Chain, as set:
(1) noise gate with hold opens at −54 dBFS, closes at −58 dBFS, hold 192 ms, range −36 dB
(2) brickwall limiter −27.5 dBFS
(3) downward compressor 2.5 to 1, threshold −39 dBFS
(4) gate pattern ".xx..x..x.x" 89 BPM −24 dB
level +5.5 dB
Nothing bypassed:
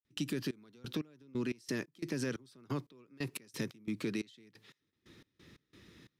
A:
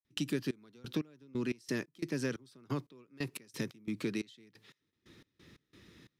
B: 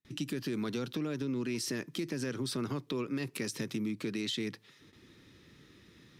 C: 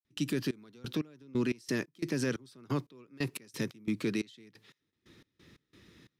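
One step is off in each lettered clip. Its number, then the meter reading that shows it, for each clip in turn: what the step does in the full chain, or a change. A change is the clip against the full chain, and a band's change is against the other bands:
2, average gain reduction 2.0 dB
4, 4 kHz band +3.0 dB
3, change in crest factor −4.5 dB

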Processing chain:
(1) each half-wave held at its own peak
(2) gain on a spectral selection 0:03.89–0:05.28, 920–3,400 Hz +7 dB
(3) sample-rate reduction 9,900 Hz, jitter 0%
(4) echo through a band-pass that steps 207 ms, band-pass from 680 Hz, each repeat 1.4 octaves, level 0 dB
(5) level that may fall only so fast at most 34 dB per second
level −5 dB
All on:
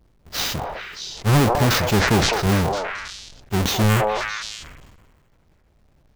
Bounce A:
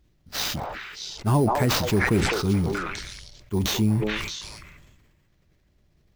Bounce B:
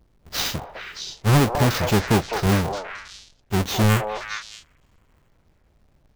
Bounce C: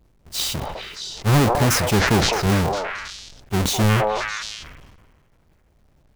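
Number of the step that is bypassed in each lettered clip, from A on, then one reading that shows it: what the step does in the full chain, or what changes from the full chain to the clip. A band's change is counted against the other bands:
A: 1, distortion level −6 dB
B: 5, change in crest factor −4.5 dB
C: 3, distortion level −7 dB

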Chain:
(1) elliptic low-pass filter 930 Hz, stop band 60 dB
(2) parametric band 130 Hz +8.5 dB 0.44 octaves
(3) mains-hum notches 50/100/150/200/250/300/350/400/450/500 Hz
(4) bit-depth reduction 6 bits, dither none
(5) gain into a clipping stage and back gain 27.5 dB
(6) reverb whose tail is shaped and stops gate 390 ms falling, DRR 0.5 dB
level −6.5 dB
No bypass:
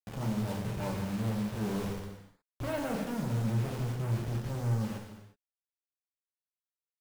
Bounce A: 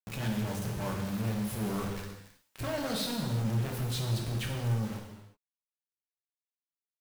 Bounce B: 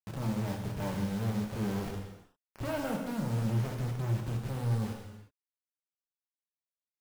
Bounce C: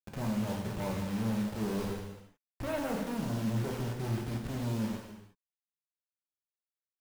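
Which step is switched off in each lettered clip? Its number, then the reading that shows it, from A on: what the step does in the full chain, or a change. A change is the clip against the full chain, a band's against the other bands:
1, 4 kHz band +8.5 dB
3, change in momentary loudness spread −2 LU
2, 125 Hz band −4.0 dB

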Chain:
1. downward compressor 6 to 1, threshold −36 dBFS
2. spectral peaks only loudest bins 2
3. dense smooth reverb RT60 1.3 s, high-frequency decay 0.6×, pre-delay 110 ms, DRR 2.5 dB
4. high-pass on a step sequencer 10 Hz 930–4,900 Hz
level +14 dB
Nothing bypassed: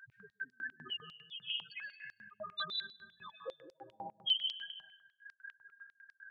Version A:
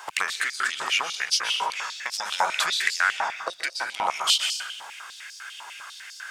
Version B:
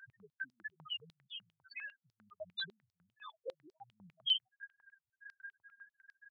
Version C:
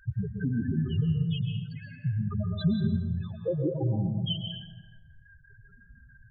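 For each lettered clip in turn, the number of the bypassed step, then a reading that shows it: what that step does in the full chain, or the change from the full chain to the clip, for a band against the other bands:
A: 2, 1 kHz band +11.0 dB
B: 3, 1 kHz band −7.5 dB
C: 4, change in crest factor −8.0 dB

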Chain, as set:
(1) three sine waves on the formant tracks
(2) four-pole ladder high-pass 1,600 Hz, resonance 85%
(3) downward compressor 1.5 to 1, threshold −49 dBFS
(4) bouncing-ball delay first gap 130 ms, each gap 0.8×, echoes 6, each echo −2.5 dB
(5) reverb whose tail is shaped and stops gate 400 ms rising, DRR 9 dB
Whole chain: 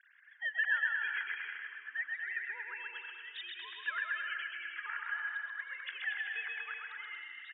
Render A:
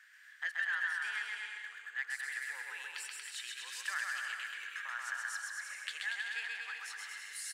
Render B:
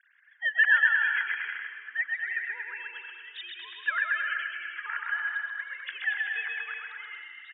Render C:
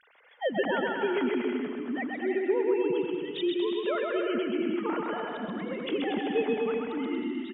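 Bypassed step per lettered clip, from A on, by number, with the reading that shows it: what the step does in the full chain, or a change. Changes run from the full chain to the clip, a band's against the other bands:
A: 1, change in crest factor +2.0 dB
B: 3, average gain reduction 4.5 dB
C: 2, change in crest factor −5.0 dB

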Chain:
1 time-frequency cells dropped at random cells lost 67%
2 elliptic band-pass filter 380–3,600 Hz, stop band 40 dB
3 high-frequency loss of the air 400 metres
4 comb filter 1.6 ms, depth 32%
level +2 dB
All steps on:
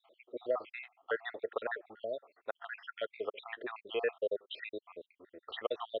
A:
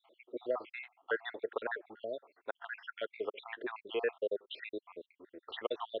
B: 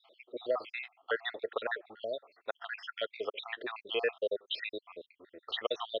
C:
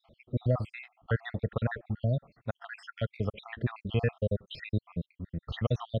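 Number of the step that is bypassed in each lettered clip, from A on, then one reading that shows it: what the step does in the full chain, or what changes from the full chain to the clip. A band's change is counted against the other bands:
4, 250 Hz band +3.5 dB
3, 4 kHz band +7.0 dB
2, 250 Hz band +15.0 dB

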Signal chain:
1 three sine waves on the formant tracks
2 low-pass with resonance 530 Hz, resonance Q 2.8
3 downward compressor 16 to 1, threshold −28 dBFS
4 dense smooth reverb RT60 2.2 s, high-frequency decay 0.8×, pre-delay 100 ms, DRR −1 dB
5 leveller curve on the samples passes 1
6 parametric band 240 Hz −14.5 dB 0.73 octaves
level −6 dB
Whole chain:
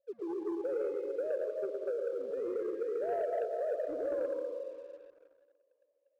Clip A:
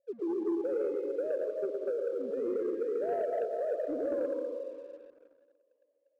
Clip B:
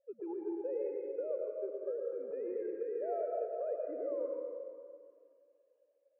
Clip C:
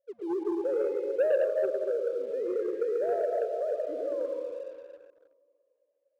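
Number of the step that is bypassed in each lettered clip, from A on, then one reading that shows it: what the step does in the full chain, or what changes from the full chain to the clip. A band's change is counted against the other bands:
6, 250 Hz band +5.0 dB
5, change in crest factor +2.5 dB
3, average gain reduction 3.5 dB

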